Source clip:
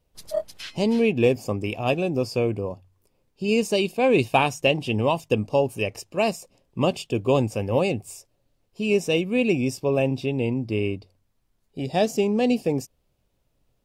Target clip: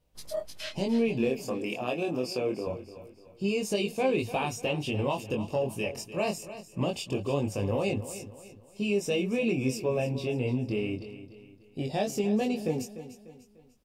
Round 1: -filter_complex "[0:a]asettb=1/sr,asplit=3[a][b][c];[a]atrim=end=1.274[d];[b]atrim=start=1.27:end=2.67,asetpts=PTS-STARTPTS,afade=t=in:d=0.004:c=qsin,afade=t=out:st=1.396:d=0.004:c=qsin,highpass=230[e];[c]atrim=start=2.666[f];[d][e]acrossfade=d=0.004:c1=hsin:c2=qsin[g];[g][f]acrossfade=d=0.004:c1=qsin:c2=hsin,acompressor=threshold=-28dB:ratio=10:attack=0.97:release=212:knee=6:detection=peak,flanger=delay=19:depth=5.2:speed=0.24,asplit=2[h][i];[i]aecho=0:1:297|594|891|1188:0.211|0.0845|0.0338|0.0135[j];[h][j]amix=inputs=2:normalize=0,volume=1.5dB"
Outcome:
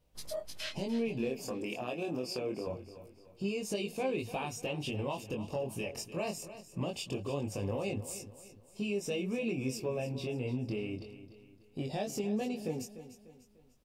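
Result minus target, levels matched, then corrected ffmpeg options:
compressor: peak gain reduction +7 dB
-filter_complex "[0:a]asettb=1/sr,asplit=3[a][b][c];[a]atrim=end=1.274[d];[b]atrim=start=1.27:end=2.67,asetpts=PTS-STARTPTS,afade=t=in:d=0.004:c=qsin,afade=t=out:st=1.396:d=0.004:c=qsin,highpass=230[e];[c]atrim=start=2.666[f];[d][e]acrossfade=d=0.004:c1=hsin:c2=qsin[g];[g][f]acrossfade=d=0.004:c1=qsin:c2=hsin,acompressor=threshold=-20dB:ratio=10:attack=0.97:release=212:knee=6:detection=peak,flanger=delay=19:depth=5.2:speed=0.24,asplit=2[h][i];[i]aecho=0:1:297|594|891|1188:0.211|0.0845|0.0338|0.0135[j];[h][j]amix=inputs=2:normalize=0,volume=1.5dB"

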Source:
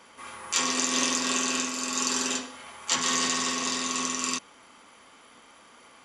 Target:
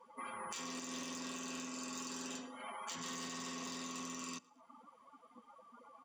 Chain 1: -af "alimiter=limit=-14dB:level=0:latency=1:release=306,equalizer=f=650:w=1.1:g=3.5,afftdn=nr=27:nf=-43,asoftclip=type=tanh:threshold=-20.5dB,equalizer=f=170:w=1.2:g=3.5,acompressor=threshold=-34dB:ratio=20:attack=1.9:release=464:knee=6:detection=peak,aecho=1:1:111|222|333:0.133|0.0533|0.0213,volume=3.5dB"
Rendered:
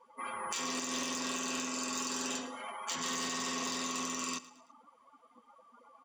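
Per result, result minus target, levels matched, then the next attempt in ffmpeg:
compressor: peak gain reduction -9.5 dB; echo-to-direct +8.5 dB; 125 Hz band -5.5 dB
-af "alimiter=limit=-14dB:level=0:latency=1:release=306,equalizer=f=650:w=1.1:g=3.5,afftdn=nr=27:nf=-43,asoftclip=type=tanh:threshold=-20.5dB,equalizer=f=170:w=1.2:g=3.5,acompressor=threshold=-42.5dB:ratio=20:attack=1.9:release=464:knee=6:detection=peak,aecho=1:1:111|222|333:0.133|0.0533|0.0213,volume=3.5dB"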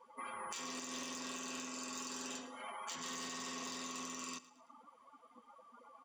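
echo-to-direct +8.5 dB; 125 Hz band -5.5 dB
-af "alimiter=limit=-14dB:level=0:latency=1:release=306,equalizer=f=650:w=1.1:g=3.5,afftdn=nr=27:nf=-43,asoftclip=type=tanh:threshold=-20.5dB,equalizer=f=170:w=1.2:g=3.5,acompressor=threshold=-42.5dB:ratio=20:attack=1.9:release=464:knee=6:detection=peak,aecho=1:1:111|222:0.0501|0.02,volume=3.5dB"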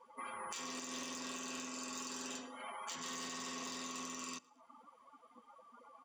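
125 Hz band -5.5 dB
-af "alimiter=limit=-14dB:level=0:latency=1:release=306,equalizer=f=650:w=1.1:g=3.5,afftdn=nr=27:nf=-43,asoftclip=type=tanh:threshold=-20.5dB,equalizer=f=170:w=1.2:g=10,acompressor=threshold=-42.5dB:ratio=20:attack=1.9:release=464:knee=6:detection=peak,aecho=1:1:111|222:0.0501|0.02,volume=3.5dB"

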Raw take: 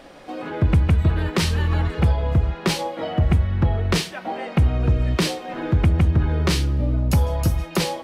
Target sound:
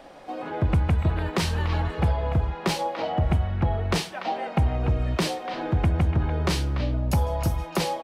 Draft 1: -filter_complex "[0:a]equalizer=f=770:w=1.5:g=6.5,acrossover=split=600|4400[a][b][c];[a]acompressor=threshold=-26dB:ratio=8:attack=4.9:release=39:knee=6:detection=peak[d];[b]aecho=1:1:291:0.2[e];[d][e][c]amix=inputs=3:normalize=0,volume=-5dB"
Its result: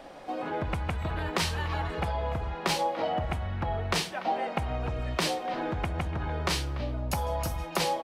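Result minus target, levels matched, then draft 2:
compressor: peak gain reduction +13.5 dB; echo-to-direct -6.5 dB
-filter_complex "[0:a]equalizer=f=770:w=1.5:g=6.5,acrossover=split=600|4400[a][b][c];[b]aecho=1:1:291:0.422[d];[a][d][c]amix=inputs=3:normalize=0,volume=-5dB"

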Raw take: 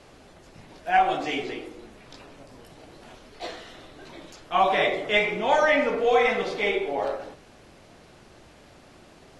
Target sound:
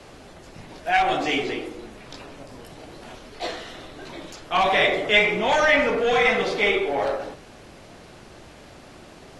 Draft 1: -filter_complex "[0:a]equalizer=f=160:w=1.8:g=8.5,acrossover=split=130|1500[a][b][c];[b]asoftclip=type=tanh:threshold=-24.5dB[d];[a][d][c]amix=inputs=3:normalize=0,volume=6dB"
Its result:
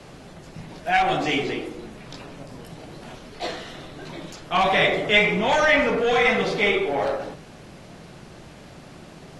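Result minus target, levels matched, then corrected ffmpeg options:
125 Hz band +5.5 dB
-filter_complex "[0:a]acrossover=split=130|1500[a][b][c];[b]asoftclip=type=tanh:threshold=-24.5dB[d];[a][d][c]amix=inputs=3:normalize=0,volume=6dB"

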